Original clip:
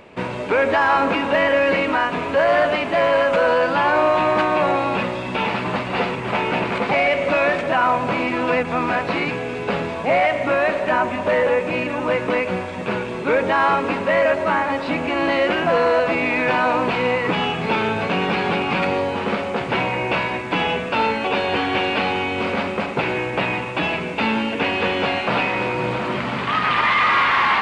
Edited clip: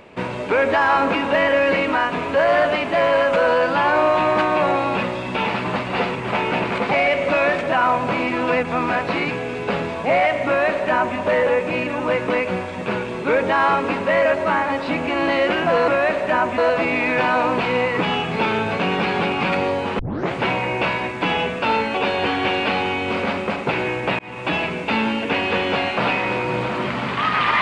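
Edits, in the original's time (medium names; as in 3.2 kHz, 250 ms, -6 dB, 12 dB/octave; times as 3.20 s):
10.47–11.17 s: copy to 15.88 s
19.29 s: tape start 0.33 s
23.49–23.78 s: fade in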